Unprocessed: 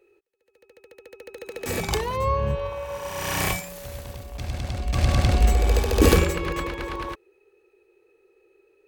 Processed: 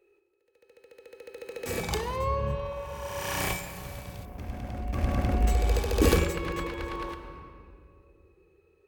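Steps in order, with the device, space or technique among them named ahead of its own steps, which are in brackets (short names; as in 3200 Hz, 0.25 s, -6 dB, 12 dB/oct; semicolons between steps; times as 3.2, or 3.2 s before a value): compressed reverb return (on a send at -4 dB: reverb RT60 2.2 s, pre-delay 18 ms + compressor, threshold -27 dBFS, peak gain reduction 14 dB); 4.25–5.47 on the sum: graphic EQ 125/250/4000/8000 Hz -6/+6/-11/-9 dB; gain -5.5 dB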